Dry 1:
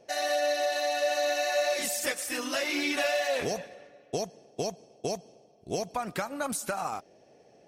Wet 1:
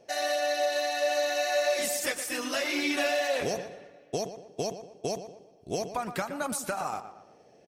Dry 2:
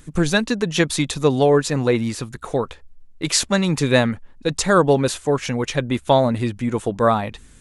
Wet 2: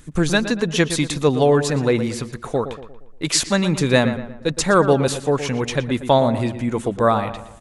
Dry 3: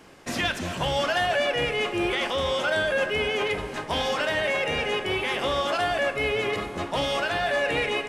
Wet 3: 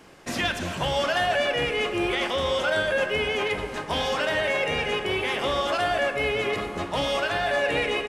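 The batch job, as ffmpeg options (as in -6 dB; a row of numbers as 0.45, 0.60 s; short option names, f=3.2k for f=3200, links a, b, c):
-filter_complex "[0:a]asplit=2[a][b];[b]adelay=117,lowpass=f=2.6k:p=1,volume=-10.5dB,asplit=2[c][d];[d]adelay=117,lowpass=f=2.6k:p=1,volume=0.44,asplit=2[e][f];[f]adelay=117,lowpass=f=2.6k:p=1,volume=0.44,asplit=2[g][h];[h]adelay=117,lowpass=f=2.6k:p=1,volume=0.44,asplit=2[i][j];[j]adelay=117,lowpass=f=2.6k:p=1,volume=0.44[k];[a][c][e][g][i][k]amix=inputs=6:normalize=0"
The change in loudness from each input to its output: 0.0, 0.0, +0.5 LU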